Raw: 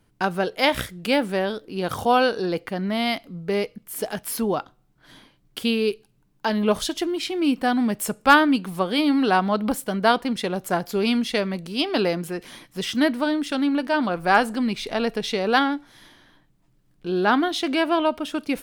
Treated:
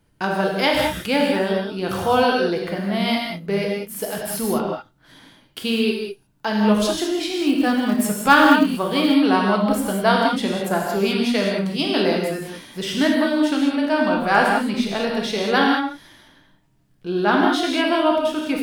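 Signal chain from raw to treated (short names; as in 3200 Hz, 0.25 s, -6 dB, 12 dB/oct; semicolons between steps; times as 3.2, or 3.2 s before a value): non-linear reverb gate 0.23 s flat, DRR -1.5 dB; 7.3–9.14 short-mantissa float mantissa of 4-bit; gain -1 dB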